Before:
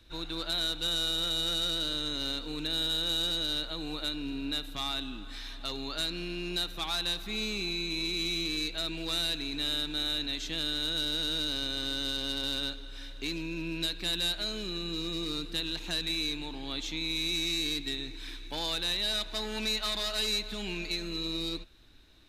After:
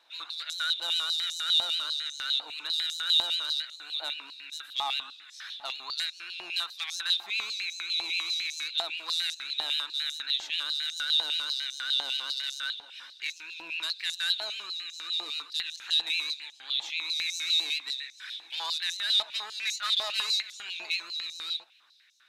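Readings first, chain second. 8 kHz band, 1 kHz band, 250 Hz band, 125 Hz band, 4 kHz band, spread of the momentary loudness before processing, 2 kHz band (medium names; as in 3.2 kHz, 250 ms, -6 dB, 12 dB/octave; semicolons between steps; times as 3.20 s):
+0.5 dB, +2.5 dB, under -20 dB, under -25 dB, +2.5 dB, 8 LU, +3.5 dB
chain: vibrato 7.5 Hz 60 cents; treble shelf 11 kHz -7 dB; step-sequenced high-pass 10 Hz 820–6100 Hz; trim -1.5 dB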